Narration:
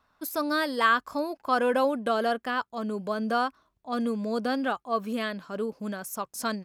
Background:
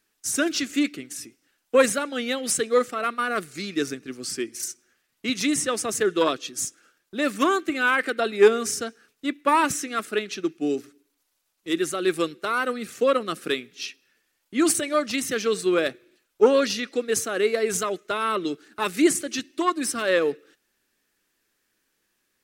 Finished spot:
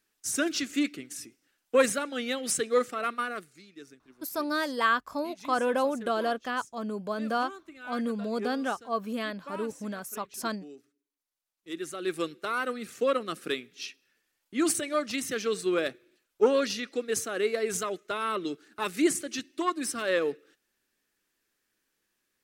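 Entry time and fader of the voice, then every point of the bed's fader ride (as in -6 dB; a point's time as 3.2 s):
4.00 s, -2.5 dB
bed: 3.2 s -4.5 dB
3.65 s -22 dB
10.93 s -22 dB
12.31 s -5.5 dB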